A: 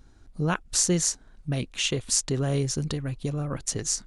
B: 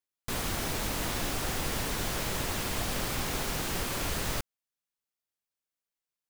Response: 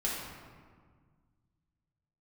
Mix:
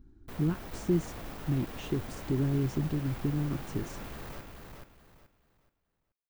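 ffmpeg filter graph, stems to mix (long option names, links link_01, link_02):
-filter_complex "[0:a]alimiter=limit=-18.5dB:level=0:latency=1,lowshelf=frequency=430:width_type=q:width=3:gain=7.5,volume=-10dB[link_01];[1:a]asoftclip=type=tanh:threshold=-34dB,volume=-4dB,asplit=2[link_02][link_03];[link_03]volume=-4.5dB,aecho=0:1:428|856|1284|1712:1|0.28|0.0784|0.022[link_04];[link_01][link_02][link_04]amix=inputs=3:normalize=0,equalizer=frequency=7800:width_type=o:width=2.8:gain=-12.5"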